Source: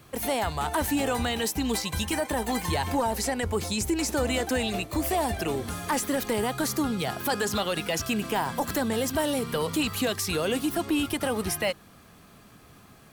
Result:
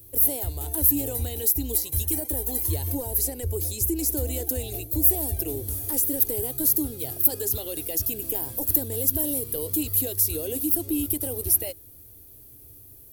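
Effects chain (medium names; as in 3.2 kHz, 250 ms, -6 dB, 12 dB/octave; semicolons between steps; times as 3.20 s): FFT filter 110 Hz 0 dB, 190 Hz -27 dB, 290 Hz -5 dB, 470 Hz -8 dB, 1.2 kHz -28 dB, 8.5 kHz -3 dB, 12 kHz +13 dB; trim +4.5 dB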